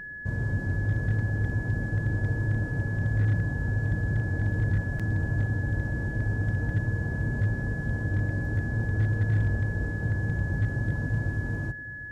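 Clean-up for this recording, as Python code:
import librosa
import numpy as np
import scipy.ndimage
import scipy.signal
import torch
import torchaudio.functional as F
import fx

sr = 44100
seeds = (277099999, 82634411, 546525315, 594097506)

y = fx.fix_declip(x, sr, threshold_db=-18.5)
y = fx.notch(y, sr, hz=1700.0, q=30.0)
y = fx.fix_interpolate(y, sr, at_s=(4.99,), length_ms=6.3)
y = fx.fix_echo_inverse(y, sr, delay_ms=751, level_db=-18.0)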